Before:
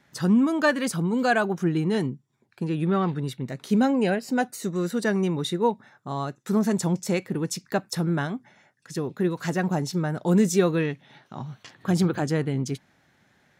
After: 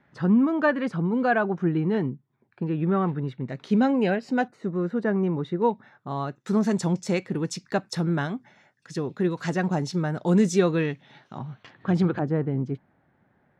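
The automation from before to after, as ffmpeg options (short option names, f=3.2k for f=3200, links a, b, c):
-af "asetnsamples=n=441:p=0,asendcmd='3.49 lowpass f 3800;4.48 lowpass f 1500;5.62 lowpass f 3400;6.44 lowpass f 6300;11.38 lowpass f 2800;12.19 lowpass f 1200',lowpass=2k"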